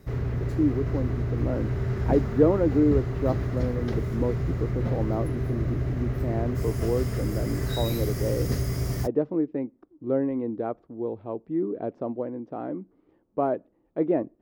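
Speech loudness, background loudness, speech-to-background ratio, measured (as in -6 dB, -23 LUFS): -29.0 LUFS, -29.0 LUFS, 0.0 dB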